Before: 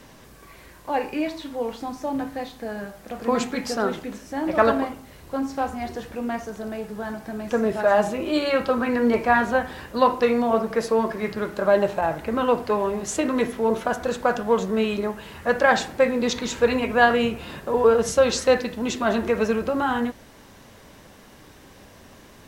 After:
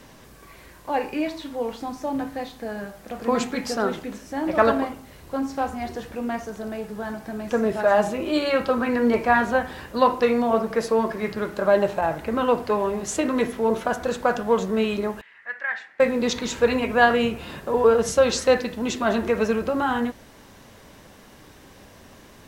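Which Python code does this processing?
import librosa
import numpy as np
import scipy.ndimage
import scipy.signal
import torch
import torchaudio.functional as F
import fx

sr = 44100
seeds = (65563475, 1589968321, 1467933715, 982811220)

y = fx.bandpass_q(x, sr, hz=1900.0, q=5.3, at=(15.21, 16.0))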